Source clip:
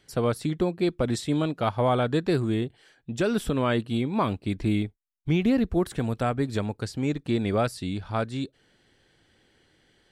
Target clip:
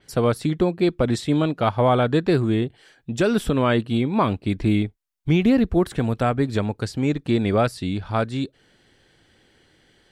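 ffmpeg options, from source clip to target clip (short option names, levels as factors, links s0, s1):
-af "adynamicequalizer=threshold=0.00316:dfrequency=4700:dqfactor=0.7:tfrequency=4700:tqfactor=0.7:attack=5:release=100:ratio=0.375:range=3:mode=cutabove:tftype=highshelf,volume=1.78"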